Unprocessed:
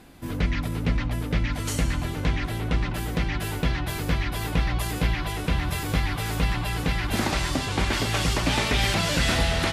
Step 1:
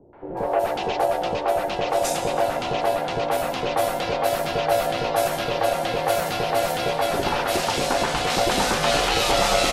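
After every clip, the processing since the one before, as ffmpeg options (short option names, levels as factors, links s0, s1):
-filter_complex "[0:a]aeval=exprs='val(0)*sin(2*PI*630*n/s)':c=same,acrossover=split=520|2000[s0][s1][s2];[s1]adelay=130[s3];[s2]adelay=370[s4];[s0][s3][s4]amix=inputs=3:normalize=0,volume=2.24"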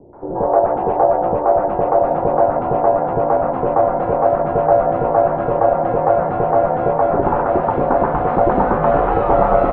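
-af "lowpass=f=1200:w=0.5412,lowpass=f=1200:w=1.3066,volume=2.51"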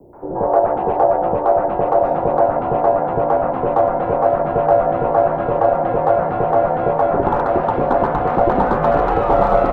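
-filter_complex "[0:a]aemphasis=mode=production:type=75fm,acrossover=split=110|410|1300[s0][s1][s2][s3];[s3]asoftclip=type=hard:threshold=0.0501[s4];[s0][s1][s2][s4]amix=inputs=4:normalize=0"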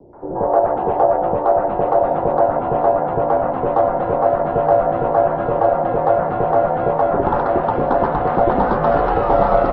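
-af "equalizer=f=2400:t=o:w=0.31:g=-4" -ar 16000 -c:a libmp3lame -b:a 24k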